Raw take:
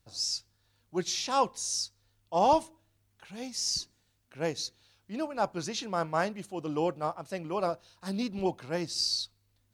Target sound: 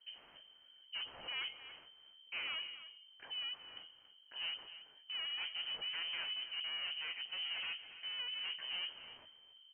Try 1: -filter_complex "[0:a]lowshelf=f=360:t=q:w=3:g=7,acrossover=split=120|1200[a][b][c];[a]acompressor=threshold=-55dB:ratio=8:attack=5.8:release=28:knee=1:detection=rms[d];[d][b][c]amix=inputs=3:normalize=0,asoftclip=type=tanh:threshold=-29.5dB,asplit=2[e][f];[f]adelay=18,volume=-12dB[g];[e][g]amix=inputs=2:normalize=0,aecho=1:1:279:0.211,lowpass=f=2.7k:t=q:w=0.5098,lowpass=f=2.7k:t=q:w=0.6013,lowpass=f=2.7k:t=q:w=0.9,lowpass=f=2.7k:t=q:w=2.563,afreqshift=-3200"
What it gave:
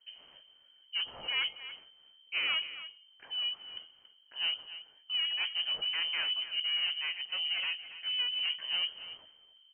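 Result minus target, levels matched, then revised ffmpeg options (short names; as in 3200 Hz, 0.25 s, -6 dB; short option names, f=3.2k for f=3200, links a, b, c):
soft clip: distortion -5 dB
-filter_complex "[0:a]lowshelf=f=360:t=q:w=3:g=7,acrossover=split=120|1200[a][b][c];[a]acompressor=threshold=-55dB:ratio=8:attack=5.8:release=28:knee=1:detection=rms[d];[d][b][c]amix=inputs=3:normalize=0,asoftclip=type=tanh:threshold=-40.5dB,asplit=2[e][f];[f]adelay=18,volume=-12dB[g];[e][g]amix=inputs=2:normalize=0,aecho=1:1:279:0.211,lowpass=f=2.7k:t=q:w=0.5098,lowpass=f=2.7k:t=q:w=0.6013,lowpass=f=2.7k:t=q:w=0.9,lowpass=f=2.7k:t=q:w=2.563,afreqshift=-3200"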